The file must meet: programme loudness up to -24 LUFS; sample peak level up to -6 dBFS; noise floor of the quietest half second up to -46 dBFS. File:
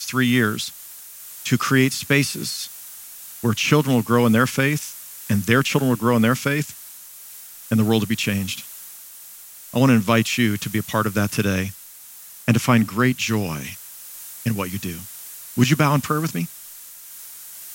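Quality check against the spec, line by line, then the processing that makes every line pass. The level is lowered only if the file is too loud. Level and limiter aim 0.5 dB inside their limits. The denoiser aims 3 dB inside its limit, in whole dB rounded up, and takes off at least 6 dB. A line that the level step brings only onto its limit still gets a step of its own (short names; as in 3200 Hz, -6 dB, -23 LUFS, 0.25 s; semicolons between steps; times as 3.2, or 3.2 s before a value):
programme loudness -20.5 LUFS: fail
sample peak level -2.5 dBFS: fail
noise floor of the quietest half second -42 dBFS: fail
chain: denoiser 6 dB, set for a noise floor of -42 dBFS; gain -4 dB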